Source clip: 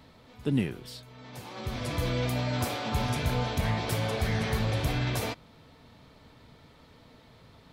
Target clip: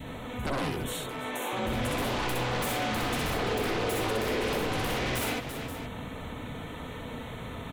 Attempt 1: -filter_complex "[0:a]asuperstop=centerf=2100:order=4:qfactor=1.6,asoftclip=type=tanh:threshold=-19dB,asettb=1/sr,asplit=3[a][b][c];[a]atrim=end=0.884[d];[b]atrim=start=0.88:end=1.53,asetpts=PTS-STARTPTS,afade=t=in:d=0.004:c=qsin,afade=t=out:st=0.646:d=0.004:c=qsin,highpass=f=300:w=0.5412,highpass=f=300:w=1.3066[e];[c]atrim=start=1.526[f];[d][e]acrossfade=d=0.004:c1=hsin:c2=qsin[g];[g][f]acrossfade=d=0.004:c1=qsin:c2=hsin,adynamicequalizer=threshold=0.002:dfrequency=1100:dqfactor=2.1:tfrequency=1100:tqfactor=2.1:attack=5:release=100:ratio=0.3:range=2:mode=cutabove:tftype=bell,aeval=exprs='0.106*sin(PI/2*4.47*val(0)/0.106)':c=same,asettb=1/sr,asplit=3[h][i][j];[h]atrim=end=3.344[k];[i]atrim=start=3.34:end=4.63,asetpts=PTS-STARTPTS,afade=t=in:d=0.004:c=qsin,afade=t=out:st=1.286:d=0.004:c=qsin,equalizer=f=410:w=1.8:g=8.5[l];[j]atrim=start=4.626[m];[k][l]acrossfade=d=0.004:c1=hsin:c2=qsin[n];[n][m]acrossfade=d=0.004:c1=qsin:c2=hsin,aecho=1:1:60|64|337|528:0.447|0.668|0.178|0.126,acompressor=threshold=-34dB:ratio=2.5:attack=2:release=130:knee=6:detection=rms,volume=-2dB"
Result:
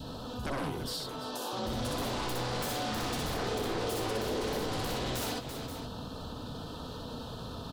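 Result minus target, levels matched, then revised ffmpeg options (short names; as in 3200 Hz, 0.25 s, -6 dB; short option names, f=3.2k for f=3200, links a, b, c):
2000 Hz band -4.0 dB; compressor: peak gain reduction +4 dB
-filter_complex "[0:a]asuperstop=centerf=4900:order=4:qfactor=1.6,asoftclip=type=tanh:threshold=-19dB,asettb=1/sr,asplit=3[a][b][c];[a]atrim=end=0.884[d];[b]atrim=start=0.88:end=1.53,asetpts=PTS-STARTPTS,afade=t=in:d=0.004:c=qsin,afade=t=out:st=0.646:d=0.004:c=qsin,highpass=f=300:w=0.5412,highpass=f=300:w=1.3066[e];[c]atrim=start=1.526[f];[d][e]acrossfade=d=0.004:c1=hsin:c2=qsin[g];[g][f]acrossfade=d=0.004:c1=qsin:c2=hsin,adynamicequalizer=threshold=0.002:dfrequency=1100:dqfactor=2.1:tfrequency=1100:tqfactor=2.1:attack=5:release=100:ratio=0.3:range=2:mode=cutabove:tftype=bell,aeval=exprs='0.106*sin(PI/2*4.47*val(0)/0.106)':c=same,asettb=1/sr,asplit=3[h][i][j];[h]atrim=end=3.344[k];[i]atrim=start=3.34:end=4.63,asetpts=PTS-STARTPTS,afade=t=in:d=0.004:c=qsin,afade=t=out:st=1.286:d=0.004:c=qsin,equalizer=f=410:w=1.8:g=8.5[l];[j]atrim=start=4.626[m];[k][l]acrossfade=d=0.004:c1=hsin:c2=qsin[n];[n][m]acrossfade=d=0.004:c1=qsin:c2=hsin,aecho=1:1:60|64|337|528:0.447|0.668|0.178|0.126,acompressor=threshold=-27.5dB:ratio=2.5:attack=2:release=130:knee=6:detection=rms,volume=-2dB"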